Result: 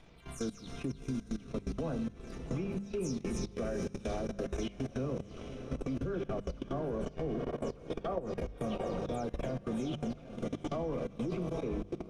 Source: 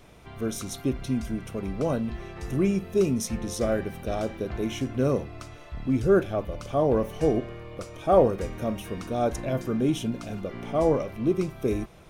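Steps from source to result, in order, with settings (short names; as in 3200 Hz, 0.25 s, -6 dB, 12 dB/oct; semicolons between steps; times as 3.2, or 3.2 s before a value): spectral delay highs early, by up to 0.201 s; diffused feedback echo 0.738 s, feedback 55%, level -8 dB; reverb RT60 2.8 s, pre-delay 3 ms, DRR 10.5 dB; level quantiser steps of 15 dB; low shelf 170 Hz +7.5 dB; transient shaper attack -3 dB, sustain -8 dB; LPF 5200 Hz 12 dB/oct; high shelf 3800 Hz +7.5 dB; notches 50/100/150/200 Hz; compressor, threshold -32 dBFS, peak gain reduction 11.5 dB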